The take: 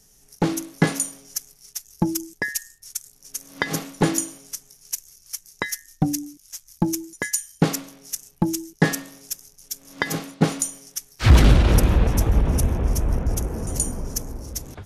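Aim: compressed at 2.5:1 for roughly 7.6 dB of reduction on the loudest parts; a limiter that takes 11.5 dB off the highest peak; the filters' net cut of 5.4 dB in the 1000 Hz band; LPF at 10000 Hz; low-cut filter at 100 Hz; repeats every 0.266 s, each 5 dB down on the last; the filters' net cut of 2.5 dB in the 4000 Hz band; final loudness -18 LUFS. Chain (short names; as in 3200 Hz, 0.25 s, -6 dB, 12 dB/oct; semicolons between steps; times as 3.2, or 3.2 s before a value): HPF 100 Hz; LPF 10000 Hz; bell 1000 Hz -7 dB; bell 4000 Hz -3 dB; compressor 2.5:1, threshold -24 dBFS; limiter -20 dBFS; feedback echo 0.266 s, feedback 56%, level -5 dB; gain +14 dB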